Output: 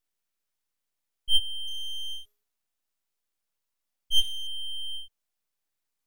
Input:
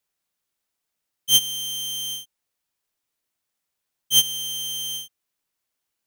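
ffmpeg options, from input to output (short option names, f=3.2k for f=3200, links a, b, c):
-filter_complex "[0:a]asettb=1/sr,asplit=3[a][b][c];[a]atrim=end=1.674[d];[b]atrim=start=1.67:end=4.47,asetpts=PTS-STARTPTS,afade=t=in:d=0.004:c=qsin,afade=t=out:st=2.796:d=0.004:c=qsin,bandreject=f=207.2:t=h:w=4,bandreject=f=414.4:t=h:w=4,bandreject=f=621.6:t=h:w=4,bandreject=f=828.8:t=h:w=4,bandreject=f=1.036k:t=h:w=4,bandreject=f=1.2432k:t=h:w=4,bandreject=f=1.4504k:t=h:w=4,bandreject=f=1.6576k:t=h:w=4,bandreject=f=1.8648k:t=h:w=4,bandreject=f=2.072k:t=h:w=4,bandreject=f=2.2792k:t=h:w=4,bandreject=f=2.4864k:t=h:w=4,bandreject=f=2.6936k:t=h:w=4,bandreject=f=2.9008k:t=h:w=4,bandreject=f=3.108k:t=h:w=4,bandreject=f=3.3152k:t=h:w=4,bandreject=f=3.5224k:t=h:w=4,bandreject=f=3.7296k:t=h:w=4,bandreject=f=3.9368k:t=h:w=4,bandreject=f=4.144k:t=h:w=4,bandreject=f=4.3512k:t=h:w=4,bandreject=f=4.5584k:t=h:w=4,bandreject=f=4.7656k:t=h:w=4,bandreject=f=4.9728k:t=h:w=4,bandreject=f=5.18k:t=h:w=4,bandreject=f=5.3872k:t=h:w=4,bandreject=f=5.5944k:t=h:w=4,bandreject=f=5.8016k:t=h:w=4,bandreject=f=6.0088k:t=h:w=4,bandreject=f=6.216k:t=h:w=4,bandreject=f=6.4232k:t=h:w=4,bandreject=f=6.6304k:t=h:w=4,bandreject=f=6.8376k:t=h:w=4[e];[c]atrim=start=4.466[f];[d][e]acrossfade=d=0.004:c1=hsin:c2=qsin[g];[g][f]acrossfade=d=0.004:c1=qsin:c2=hsin,aeval=exprs='abs(val(0))':c=same,volume=-1.5dB"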